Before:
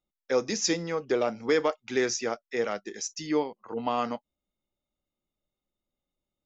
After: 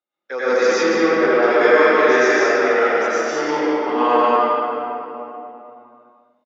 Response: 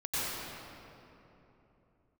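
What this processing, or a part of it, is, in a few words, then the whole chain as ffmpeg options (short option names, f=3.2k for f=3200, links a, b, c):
station announcement: -filter_complex "[0:a]highpass=400,lowpass=3.6k,equalizer=f=1.5k:t=o:w=0.53:g=8,aecho=1:1:142.9|195.3:0.562|0.708[a];[1:a]atrim=start_sample=2205[b];[a][b]afir=irnorm=-1:irlink=0,asettb=1/sr,asplit=3[c][d][e];[c]atrim=end=0.834[f];[d]atrim=start=0.83:end=1.43,asetpts=PTS-STARTPTS,afade=t=in:d=0.004:c=qsin,afade=t=out:st=0.596:d=0.004:c=qsin,bass=f=250:g=2,treble=f=4k:g=-7[g];[e]atrim=start=1.426[h];[f][g]acrossfade=d=0.004:c1=hsin:c2=qsin[i];[i][h]acrossfade=d=0.004:c1=qsin:c2=hsin,volume=3.5dB"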